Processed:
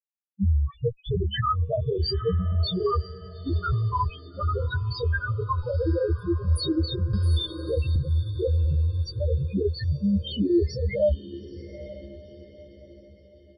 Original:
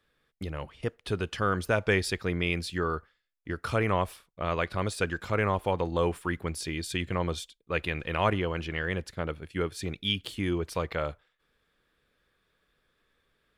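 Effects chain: Bessel low-pass 6600 Hz, order 2; fuzz box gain 44 dB, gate -51 dBFS; loudest bins only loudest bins 1; doubler 15 ms -3 dB; diffused feedback echo 0.907 s, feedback 42%, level -16 dB; 7.13–7.96 three-band squash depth 70%

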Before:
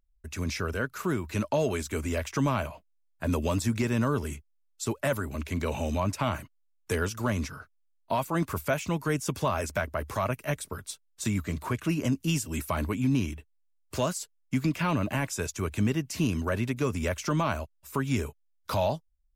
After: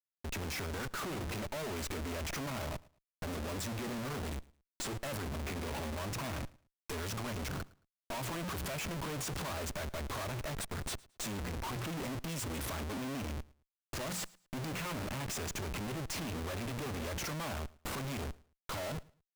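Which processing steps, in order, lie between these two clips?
notches 60/120/180 Hz; Schmitt trigger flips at -43 dBFS; feedback echo 0.11 s, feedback 24%, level -23 dB; gain -8 dB

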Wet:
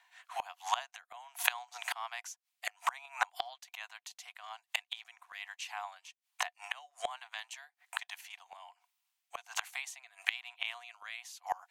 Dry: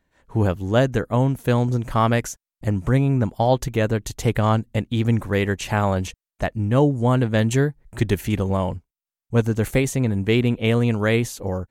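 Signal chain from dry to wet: dynamic EQ 5100 Hz, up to +4 dB, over -45 dBFS, Q 1.6; rippled Chebyshev high-pass 700 Hz, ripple 6 dB; flipped gate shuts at -30 dBFS, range -27 dB; rotary speaker horn 1.2 Hz; gain +16.5 dB

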